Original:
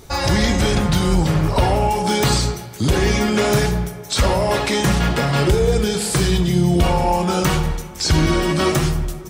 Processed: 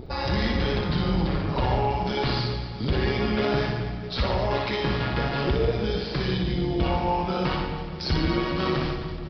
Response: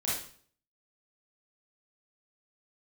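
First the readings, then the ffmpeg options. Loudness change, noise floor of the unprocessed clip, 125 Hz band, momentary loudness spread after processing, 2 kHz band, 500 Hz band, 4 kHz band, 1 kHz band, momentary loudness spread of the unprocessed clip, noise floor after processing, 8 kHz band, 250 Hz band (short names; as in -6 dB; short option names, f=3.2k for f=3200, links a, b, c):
-8.0 dB, -34 dBFS, -8.0 dB, 4 LU, -7.0 dB, -7.0 dB, -8.0 dB, -7.0 dB, 4 LU, -34 dBFS, under -25 dB, -8.0 dB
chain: -filter_complex "[0:a]aresample=11025,aresample=44100,tremolo=f=130:d=0.519,aecho=1:1:60|144|261.6|426.2|656.7:0.631|0.398|0.251|0.158|0.1,acrossover=split=720[a][b];[a]acompressor=mode=upward:threshold=-21dB:ratio=2.5[c];[c][b]amix=inputs=2:normalize=0,volume=-7dB"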